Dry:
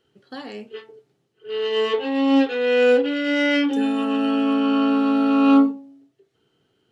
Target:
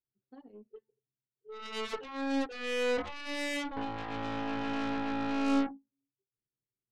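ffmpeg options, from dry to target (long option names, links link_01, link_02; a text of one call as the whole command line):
ffmpeg -i in.wav -af "anlmdn=158,asoftclip=type=tanh:threshold=-13dB,aeval=exprs='0.224*(cos(1*acos(clip(val(0)/0.224,-1,1)))-cos(1*PI/2))+0.0316*(cos(2*acos(clip(val(0)/0.224,-1,1)))-cos(2*PI/2))+0.0891*(cos(3*acos(clip(val(0)/0.224,-1,1)))-cos(3*PI/2))+0.0158*(cos(5*acos(clip(val(0)/0.224,-1,1)))-cos(5*PI/2))+0.0316*(cos(7*acos(clip(val(0)/0.224,-1,1)))-cos(7*PI/2))':channel_layout=same,volume=-9dB" out.wav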